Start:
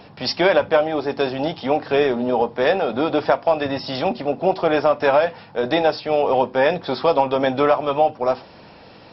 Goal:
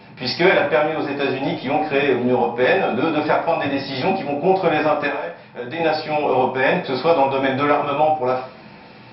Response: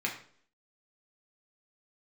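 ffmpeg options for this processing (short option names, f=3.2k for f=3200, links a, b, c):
-filter_complex "[0:a]asettb=1/sr,asplit=3[a][b][c];[a]atrim=end=5.064[d];[b]atrim=start=5.06:end=5.8,asetpts=PTS-STARTPTS,afade=t=in:d=0.004:c=qsin,afade=t=out:st=0.736:d=0.004:c=qsin,acompressor=threshold=-33dB:ratio=2[e];[c]atrim=start=5.796[f];[d][e]acrossfade=d=0.004:c1=hsin:c2=qsin[g];[g][f]acrossfade=d=0.004:c1=qsin:c2=hsin[h];[1:a]atrim=start_sample=2205[i];[h][i]afir=irnorm=-1:irlink=0,volume=-2.5dB"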